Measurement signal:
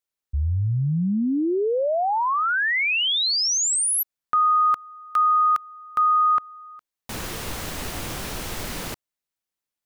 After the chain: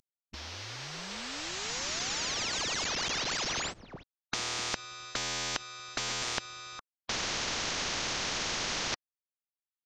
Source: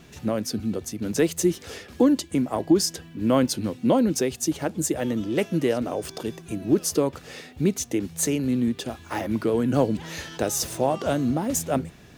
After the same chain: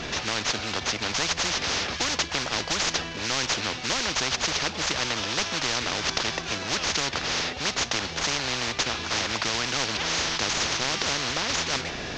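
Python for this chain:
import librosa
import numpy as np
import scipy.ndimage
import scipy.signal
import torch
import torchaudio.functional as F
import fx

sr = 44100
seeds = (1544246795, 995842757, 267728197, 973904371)

y = fx.cvsd(x, sr, bps=32000)
y = fx.spectral_comp(y, sr, ratio=10.0)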